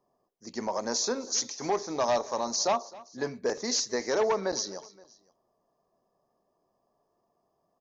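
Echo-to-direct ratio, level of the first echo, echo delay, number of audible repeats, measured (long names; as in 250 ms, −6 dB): −19.5 dB, −20.5 dB, 261 ms, 2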